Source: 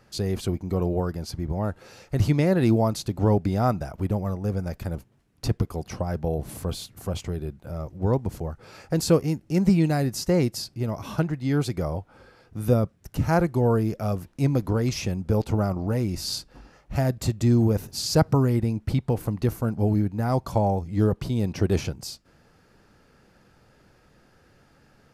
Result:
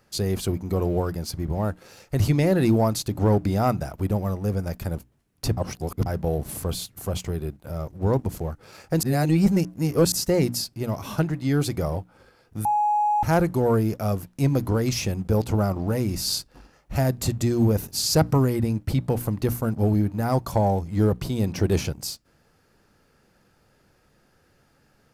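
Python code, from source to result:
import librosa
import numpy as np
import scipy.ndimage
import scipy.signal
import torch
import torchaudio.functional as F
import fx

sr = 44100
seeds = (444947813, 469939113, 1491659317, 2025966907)

y = fx.edit(x, sr, fx.reverse_span(start_s=5.57, length_s=0.49),
    fx.reverse_span(start_s=9.03, length_s=1.09),
    fx.bleep(start_s=12.65, length_s=0.58, hz=837.0, db=-20.0), tone=tone)
y = fx.high_shelf(y, sr, hz=9000.0, db=9.5)
y = fx.hum_notches(y, sr, base_hz=60, count=5)
y = fx.leveller(y, sr, passes=1)
y = y * librosa.db_to_amplitude(-2.0)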